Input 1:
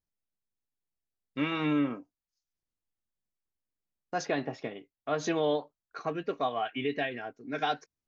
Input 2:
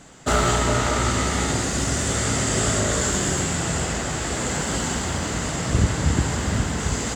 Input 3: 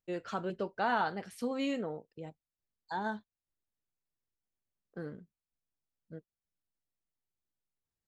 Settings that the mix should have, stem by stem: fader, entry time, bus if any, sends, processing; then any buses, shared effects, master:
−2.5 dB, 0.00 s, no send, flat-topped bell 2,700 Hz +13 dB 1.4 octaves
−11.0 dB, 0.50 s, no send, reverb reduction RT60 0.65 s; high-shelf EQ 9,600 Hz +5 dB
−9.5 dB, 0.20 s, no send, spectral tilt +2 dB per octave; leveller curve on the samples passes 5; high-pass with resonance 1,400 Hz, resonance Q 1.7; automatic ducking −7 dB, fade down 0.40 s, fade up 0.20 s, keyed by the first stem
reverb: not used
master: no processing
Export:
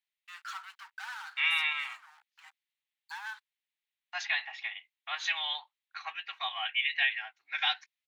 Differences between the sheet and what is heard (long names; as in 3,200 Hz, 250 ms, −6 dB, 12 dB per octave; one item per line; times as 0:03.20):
stem 2: muted
stem 3 −9.5 dB → −16.5 dB
master: extra elliptic high-pass filter 810 Hz, stop band 40 dB